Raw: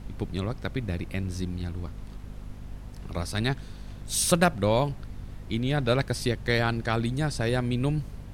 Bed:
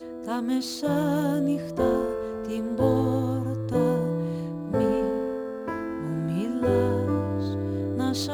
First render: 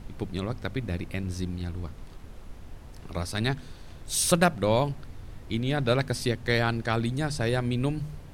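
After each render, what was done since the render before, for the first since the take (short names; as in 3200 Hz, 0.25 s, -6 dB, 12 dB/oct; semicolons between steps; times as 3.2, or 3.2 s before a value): de-hum 50 Hz, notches 5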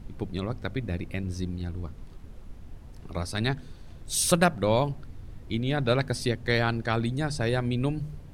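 denoiser 6 dB, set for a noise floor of -46 dBFS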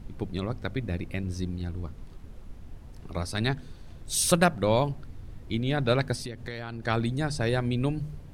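6.15–6.83 compressor 8:1, threshold -32 dBFS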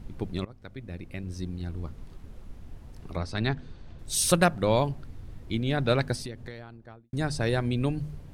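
0.45–1.87 fade in, from -18.5 dB; 3.16–3.99 air absorption 100 m; 6.13–7.13 studio fade out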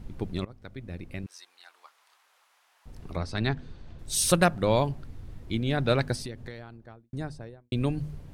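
1.26–2.86 HPF 880 Hz 24 dB/oct; 6.76–7.72 studio fade out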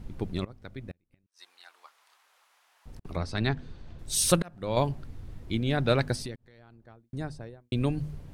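0.91–3.05 flipped gate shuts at -33 dBFS, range -36 dB; 4.35–4.77 auto swell 0.649 s; 6.36–7.25 fade in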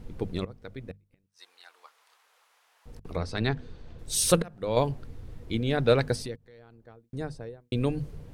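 bell 470 Hz +9.5 dB 0.2 oct; notches 50/100/150/200 Hz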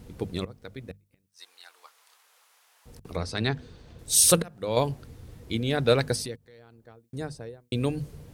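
HPF 48 Hz; high shelf 4700 Hz +10 dB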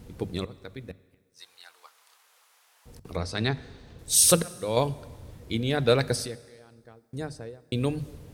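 plate-style reverb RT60 1.5 s, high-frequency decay 0.9×, DRR 17.5 dB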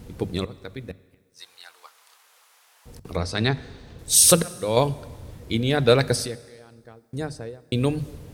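gain +4.5 dB; limiter -3 dBFS, peak gain reduction 1.5 dB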